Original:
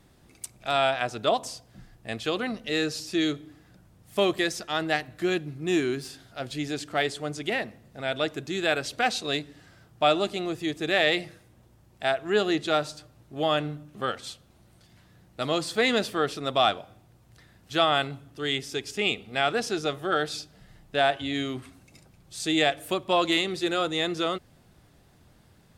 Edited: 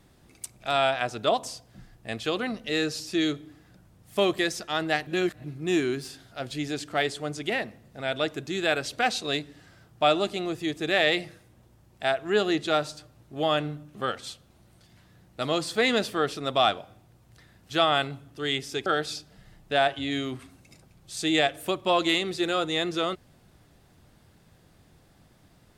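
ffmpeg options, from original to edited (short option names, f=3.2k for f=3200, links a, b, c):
-filter_complex "[0:a]asplit=4[a][b][c][d];[a]atrim=end=5.072[e];[b]atrim=start=5.068:end=5.442,asetpts=PTS-STARTPTS,areverse[f];[c]atrim=start=5.438:end=18.862[g];[d]atrim=start=20.088[h];[e][f]acrossfade=d=0.004:c1=hsin:c2=hsin[i];[i][g]acrossfade=d=0.004:c1=hsin:c2=hsin[j];[j][h]acrossfade=d=0.004:c1=hsin:c2=hsin"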